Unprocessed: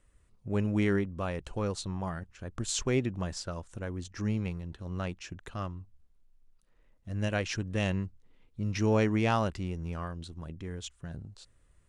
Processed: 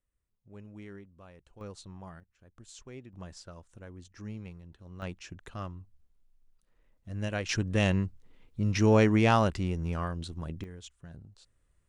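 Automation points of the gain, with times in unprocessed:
-19 dB
from 1.61 s -11 dB
from 2.2 s -18 dB
from 3.13 s -10 dB
from 5.02 s -2.5 dB
from 7.49 s +4 dB
from 10.64 s -6.5 dB

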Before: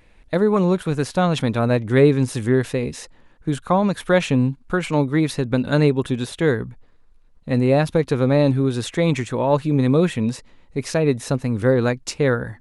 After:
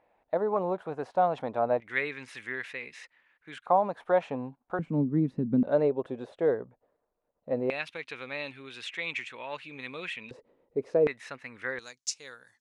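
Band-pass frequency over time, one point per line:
band-pass, Q 2.8
730 Hz
from 1.8 s 2100 Hz
from 3.66 s 750 Hz
from 4.79 s 220 Hz
from 5.63 s 600 Hz
from 7.7 s 2500 Hz
from 10.31 s 470 Hz
from 11.07 s 2000 Hz
from 11.79 s 6200 Hz

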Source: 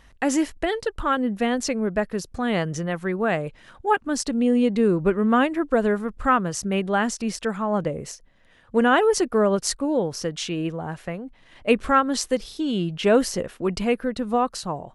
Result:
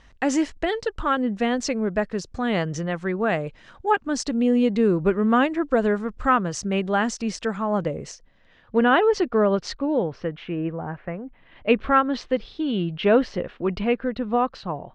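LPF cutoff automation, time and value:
LPF 24 dB/oct
8.01 s 7200 Hz
8.86 s 4500 Hz
9.76 s 4500 Hz
10.47 s 2200 Hz
11.11 s 2200 Hz
11.69 s 3700 Hz

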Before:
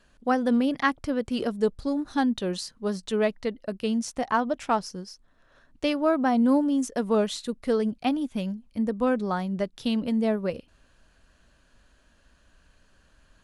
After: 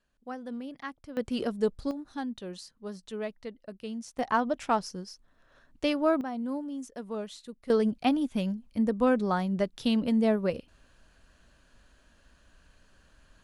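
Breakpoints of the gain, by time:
-15.5 dB
from 1.17 s -3 dB
from 1.91 s -11 dB
from 4.19 s -2 dB
from 6.21 s -12.5 dB
from 7.7 s 0 dB

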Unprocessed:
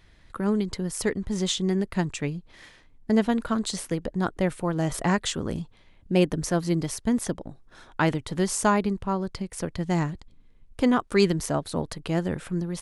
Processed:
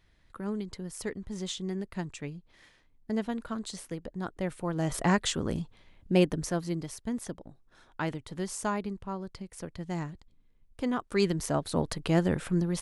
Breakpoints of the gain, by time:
4.29 s -9.5 dB
5.07 s -1.5 dB
6.13 s -1.5 dB
6.87 s -9.5 dB
10.85 s -9.5 dB
11.89 s +1 dB

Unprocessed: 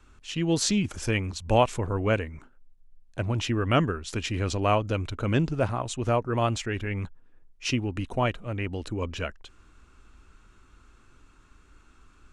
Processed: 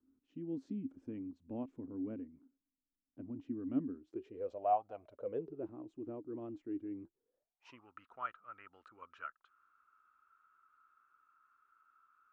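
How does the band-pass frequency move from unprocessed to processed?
band-pass, Q 12
3.96 s 270 Hz
4.82 s 810 Hz
5.73 s 310 Hz
7.02 s 310 Hz
7.88 s 1300 Hz

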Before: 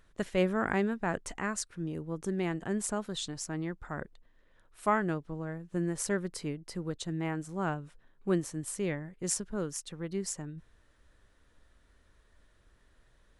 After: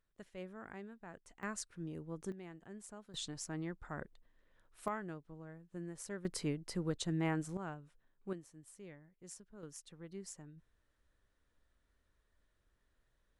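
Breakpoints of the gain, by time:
-20 dB
from 1.43 s -8 dB
from 2.32 s -18.5 dB
from 3.14 s -6 dB
from 4.88 s -13.5 dB
from 6.25 s -1 dB
from 7.57 s -12 dB
from 8.33 s -20 dB
from 9.63 s -13 dB

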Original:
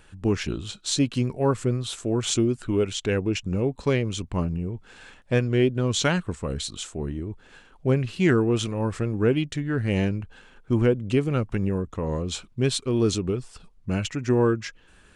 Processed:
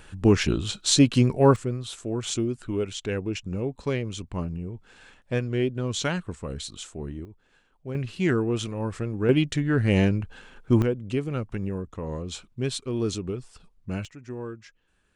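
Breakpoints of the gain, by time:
+5 dB
from 1.56 s -4.5 dB
from 7.25 s -13 dB
from 7.95 s -3.5 dB
from 9.29 s +3 dB
from 10.82 s -5 dB
from 14.05 s -15 dB

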